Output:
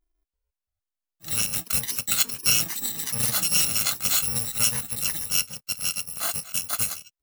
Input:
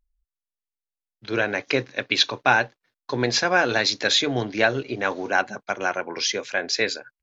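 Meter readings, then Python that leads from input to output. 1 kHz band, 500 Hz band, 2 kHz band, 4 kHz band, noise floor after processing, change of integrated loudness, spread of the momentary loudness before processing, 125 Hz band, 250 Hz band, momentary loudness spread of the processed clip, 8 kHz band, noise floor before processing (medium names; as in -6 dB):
-13.5 dB, -20.0 dB, -11.5 dB, -3.0 dB, under -85 dBFS, 0.0 dB, 7 LU, -3.0 dB, -11.5 dB, 7 LU, no reading, under -85 dBFS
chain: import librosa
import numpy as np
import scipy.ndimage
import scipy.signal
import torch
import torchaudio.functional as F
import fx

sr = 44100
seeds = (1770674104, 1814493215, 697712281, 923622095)

y = fx.bit_reversed(x, sr, seeds[0], block=128)
y = fx.echo_pitch(y, sr, ms=337, semitones=6, count=2, db_per_echo=-6.0)
y = F.gain(torch.from_numpy(y), -2.5).numpy()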